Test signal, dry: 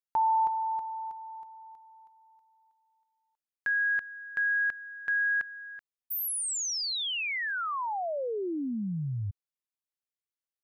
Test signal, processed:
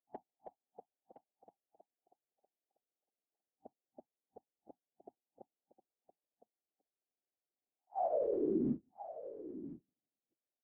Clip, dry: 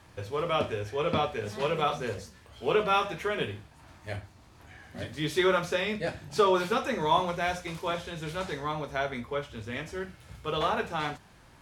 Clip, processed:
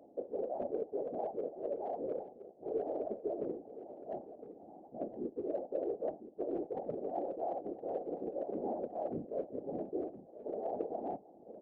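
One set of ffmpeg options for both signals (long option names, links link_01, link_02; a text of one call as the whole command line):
ffmpeg -i in.wav -af "afftfilt=real='re*between(b*sr/4096,240,780)':imag='im*between(b*sr/4096,240,780)':win_size=4096:overlap=0.75,areverse,acompressor=threshold=-38dB:ratio=12:attack=0.47:release=574:knee=6:detection=peak,areverse,aecho=1:1:1014:0.224,afftfilt=real='hypot(re,im)*cos(2*PI*random(0))':imag='hypot(re,im)*sin(2*PI*random(1))':win_size=512:overlap=0.75,volume=12.5dB" out.wav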